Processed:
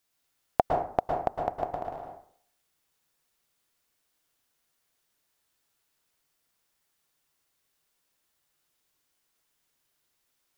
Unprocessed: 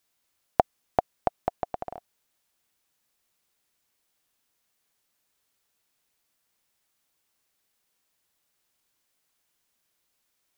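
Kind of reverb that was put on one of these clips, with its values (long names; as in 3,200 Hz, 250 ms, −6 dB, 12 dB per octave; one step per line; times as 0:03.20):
dense smooth reverb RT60 0.57 s, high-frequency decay 0.6×, pre-delay 100 ms, DRR 1 dB
level −2.5 dB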